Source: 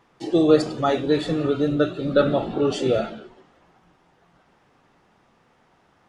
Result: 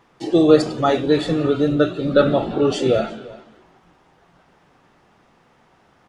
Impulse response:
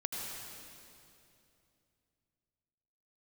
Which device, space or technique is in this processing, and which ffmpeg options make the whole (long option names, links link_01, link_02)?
ducked delay: -filter_complex "[0:a]asplit=3[link_01][link_02][link_03];[link_02]adelay=346,volume=-9dB[link_04];[link_03]apad=whole_len=283799[link_05];[link_04][link_05]sidechaincompress=threshold=-33dB:ratio=8:attack=16:release=792[link_06];[link_01][link_06]amix=inputs=2:normalize=0,volume=3.5dB"